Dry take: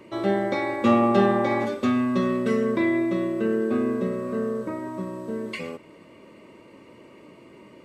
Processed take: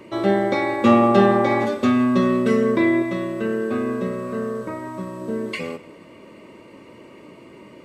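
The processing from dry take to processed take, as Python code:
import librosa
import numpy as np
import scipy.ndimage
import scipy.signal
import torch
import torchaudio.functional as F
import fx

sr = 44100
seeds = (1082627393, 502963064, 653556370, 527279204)

y = fx.peak_eq(x, sr, hz=310.0, db=-5.5, octaves=1.8, at=(3.02, 5.21))
y = y + 10.0 ** (-19.0 / 20.0) * np.pad(y, (int(169 * sr / 1000.0), 0))[:len(y)]
y = y * librosa.db_to_amplitude(4.5)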